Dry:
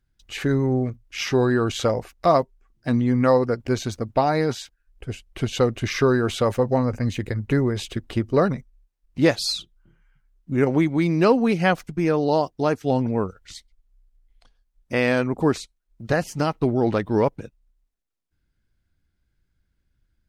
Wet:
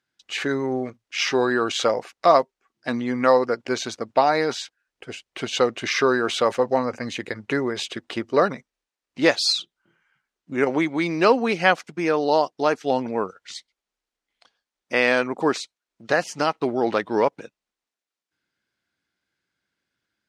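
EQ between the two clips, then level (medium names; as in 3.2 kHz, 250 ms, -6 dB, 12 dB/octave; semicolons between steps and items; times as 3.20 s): band-pass 200–7100 Hz; bass shelf 370 Hz -12 dB; +5.0 dB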